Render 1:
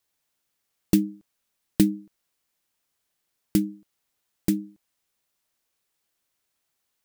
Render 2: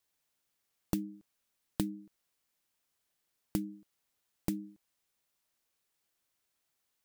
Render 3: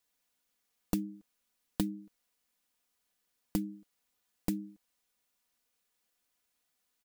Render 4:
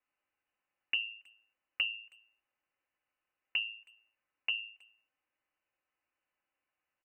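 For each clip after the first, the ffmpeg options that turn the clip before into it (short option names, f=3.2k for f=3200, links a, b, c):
-af "acompressor=threshold=-27dB:ratio=5,volume=-3.5dB"
-af "aecho=1:1:4.1:0.52"
-filter_complex "[0:a]bandreject=f=111.7:t=h:w=4,bandreject=f=223.4:t=h:w=4,bandreject=f=335.1:t=h:w=4,bandreject=f=446.8:t=h:w=4,lowpass=f=2.6k:t=q:w=0.5098,lowpass=f=2.6k:t=q:w=0.6013,lowpass=f=2.6k:t=q:w=0.9,lowpass=f=2.6k:t=q:w=2.563,afreqshift=-3000,asplit=2[a][b];[b]adelay=320,highpass=300,lowpass=3.4k,asoftclip=type=hard:threshold=-28.5dB,volume=-26dB[c];[a][c]amix=inputs=2:normalize=0,volume=-1dB"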